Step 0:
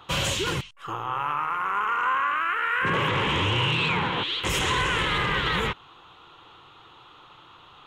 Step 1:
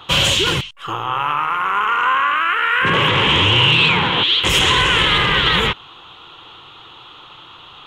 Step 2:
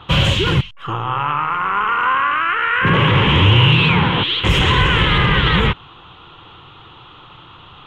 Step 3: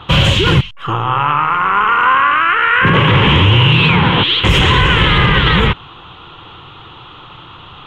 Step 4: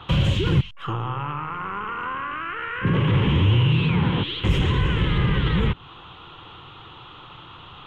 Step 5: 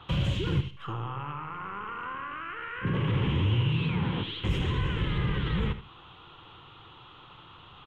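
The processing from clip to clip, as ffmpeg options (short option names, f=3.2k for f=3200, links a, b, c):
-af "equalizer=f=3.2k:w=2:g=7,volume=7.5dB"
-af "bass=f=250:g=9,treble=f=4k:g=-13"
-af "alimiter=level_in=6.5dB:limit=-1dB:release=50:level=0:latency=1,volume=-1dB"
-filter_complex "[0:a]acrossover=split=420[a][b];[b]acompressor=threshold=-23dB:ratio=4[c];[a][c]amix=inputs=2:normalize=0,volume=-7dB"
-af "aecho=1:1:77|154|231:0.251|0.0553|0.0122,volume=-8dB"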